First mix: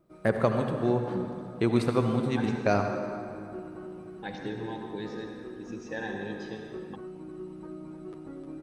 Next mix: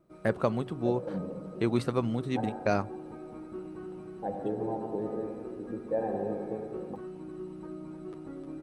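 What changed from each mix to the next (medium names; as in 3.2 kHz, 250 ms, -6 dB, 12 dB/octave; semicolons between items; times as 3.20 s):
first voice: send off; second voice: add resonant low-pass 640 Hz, resonance Q 4.3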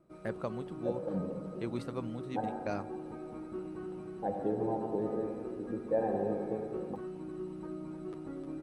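first voice -10.0 dB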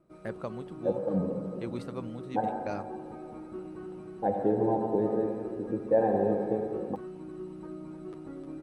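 second voice +6.5 dB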